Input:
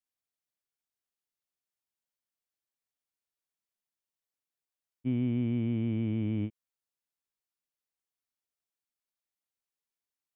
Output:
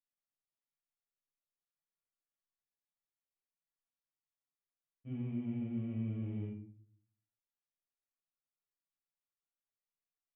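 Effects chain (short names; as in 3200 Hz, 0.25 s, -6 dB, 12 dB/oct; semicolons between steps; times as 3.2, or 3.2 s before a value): LPF 2400 Hz; resonator 140 Hz, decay 0.36 s, harmonics all, mix 80%; reverb RT60 0.50 s, pre-delay 6 ms, DRR -4 dB; gain -6.5 dB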